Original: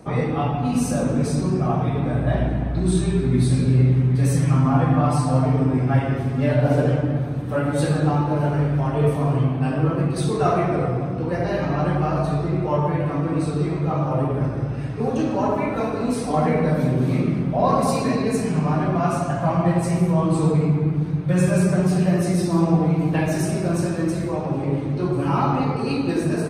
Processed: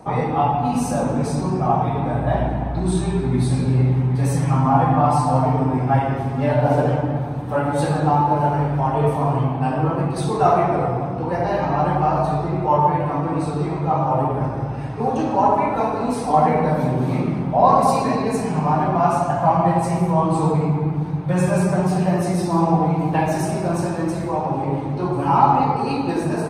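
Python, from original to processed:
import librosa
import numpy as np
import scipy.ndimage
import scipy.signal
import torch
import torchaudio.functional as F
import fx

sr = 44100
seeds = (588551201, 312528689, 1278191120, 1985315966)

y = fx.peak_eq(x, sr, hz=860.0, db=13.0, octaves=0.63)
y = y * librosa.db_to_amplitude(-1.0)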